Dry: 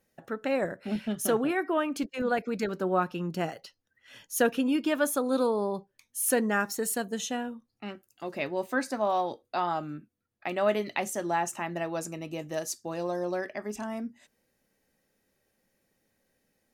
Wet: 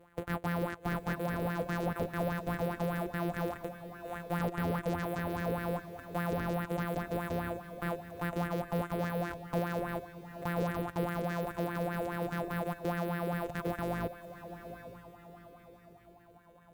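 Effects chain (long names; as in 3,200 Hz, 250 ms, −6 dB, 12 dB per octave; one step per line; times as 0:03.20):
samples sorted by size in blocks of 256 samples
parametric band 5,300 Hz −13.5 dB 0.94 octaves
in parallel at +3 dB: downward compressor, threshold −37 dBFS, peak gain reduction 16.5 dB
on the sum: tube saturation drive 34 dB, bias 0.25
reverb reduction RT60 0.71 s
on a send: feedback delay with all-pass diffusion 805 ms, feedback 46%, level −11 dB
on the sum: auto-filter bell 4.9 Hz 430–1,800 Hz +15 dB
level +2.5 dB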